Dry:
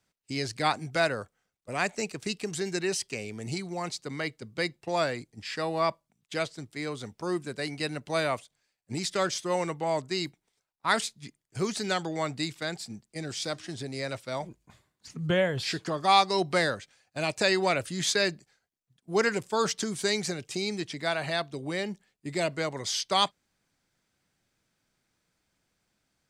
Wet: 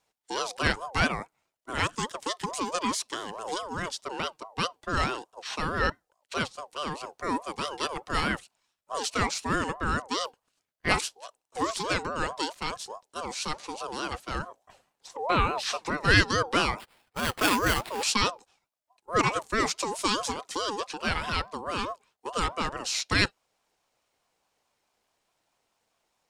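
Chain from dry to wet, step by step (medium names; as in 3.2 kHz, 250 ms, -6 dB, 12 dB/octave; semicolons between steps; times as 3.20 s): 16.78–18.03 s: sample-rate reducer 6.1 kHz, jitter 0%; ring modulator with a swept carrier 750 Hz, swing 20%, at 4.7 Hz; trim +3.5 dB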